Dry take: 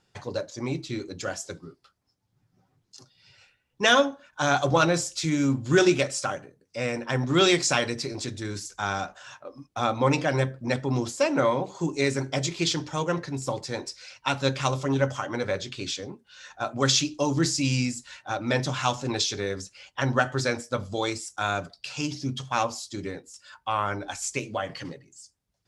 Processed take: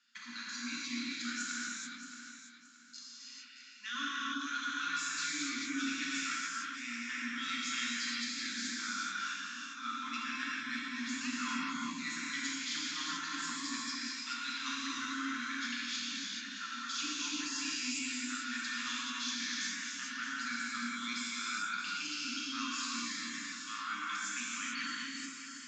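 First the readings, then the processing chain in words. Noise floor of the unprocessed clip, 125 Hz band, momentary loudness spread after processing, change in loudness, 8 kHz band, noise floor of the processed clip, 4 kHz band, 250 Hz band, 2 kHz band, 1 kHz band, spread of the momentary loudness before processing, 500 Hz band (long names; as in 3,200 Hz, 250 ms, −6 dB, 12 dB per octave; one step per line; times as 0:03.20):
−73 dBFS, −33.5 dB, 7 LU, −10.0 dB, −6.5 dB, −51 dBFS, −6.5 dB, −12.5 dB, −5.5 dB, −12.0 dB, 15 LU, below −35 dB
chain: inverse Chebyshev band-stop filter 370–770 Hz, stop band 50 dB
reverb reduction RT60 0.66 s
Chebyshev band-pass filter 240–7,000 Hz, order 5
parametric band 5,700 Hz −3.5 dB 0.2 octaves
reversed playback
downward compressor 6 to 1, threshold −41 dBFS, peak gain reduction 21.5 dB
reversed playback
flanger 1.4 Hz, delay 0.8 ms, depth 9.5 ms, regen +86%
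on a send: delay that swaps between a low-pass and a high-pass 312 ms, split 810 Hz, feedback 56%, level −5.5 dB
on the sum: reverb whose tail is shaped and stops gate 470 ms flat, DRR −7 dB
level +3.5 dB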